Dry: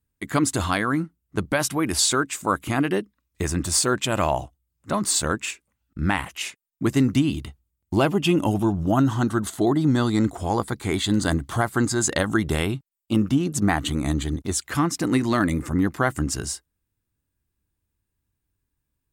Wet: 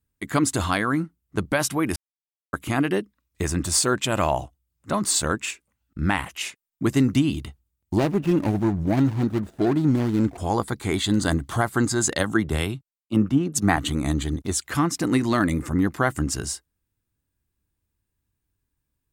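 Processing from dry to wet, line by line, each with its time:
1.96–2.53 s: mute
7.98–10.38 s: median filter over 41 samples
12.13–13.77 s: three bands expanded up and down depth 100%

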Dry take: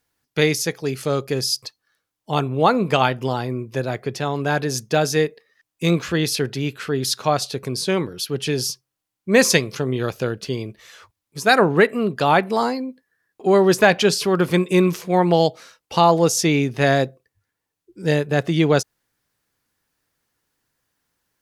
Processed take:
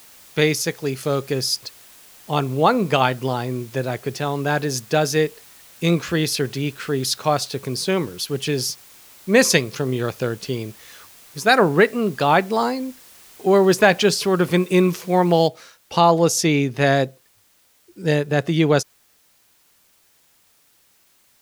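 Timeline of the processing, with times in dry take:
15.48 s: noise floor step -47 dB -59 dB

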